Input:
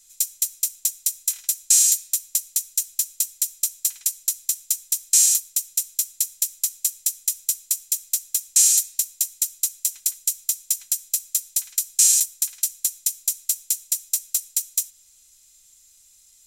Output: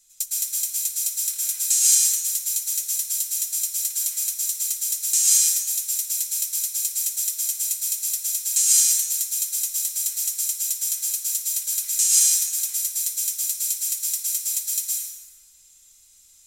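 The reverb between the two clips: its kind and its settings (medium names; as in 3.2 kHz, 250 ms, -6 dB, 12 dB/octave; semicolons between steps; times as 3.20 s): plate-style reverb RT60 1.5 s, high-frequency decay 0.6×, pre-delay 100 ms, DRR -6 dB; trim -5 dB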